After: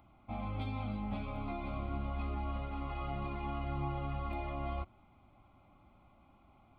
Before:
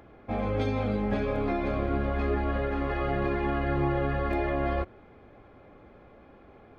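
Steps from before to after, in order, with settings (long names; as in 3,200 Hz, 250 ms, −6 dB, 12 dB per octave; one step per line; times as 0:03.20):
phaser with its sweep stopped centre 1,700 Hz, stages 6
level −7 dB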